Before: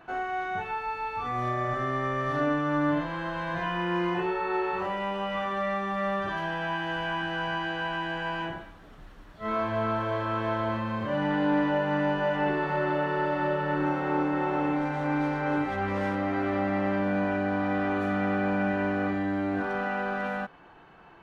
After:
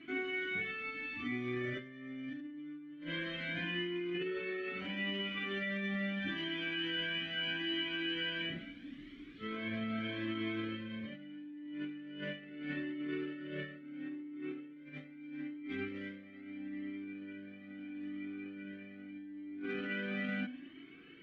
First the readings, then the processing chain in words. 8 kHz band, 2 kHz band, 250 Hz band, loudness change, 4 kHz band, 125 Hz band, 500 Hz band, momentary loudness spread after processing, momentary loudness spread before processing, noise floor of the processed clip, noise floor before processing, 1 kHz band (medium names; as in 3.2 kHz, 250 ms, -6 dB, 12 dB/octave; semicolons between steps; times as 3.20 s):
no reading, -8.0 dB, -10.5 dB, -11.0 dB, +1.5 dB, -14.0 dB, -15.0 dB, 13 LU, 5 LU, -53 dBFS, -50 dBFS, -25.0 dB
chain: de-hum 83.74 Hz, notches 20; peak limiter -25 dBFS, peak gain reduction 8.5 dB; vowel filter i; compressor with a negative ratio -50 dBFS, ratio -1; Shepard-style flanger rising 0.77 Hz; trim +14 dB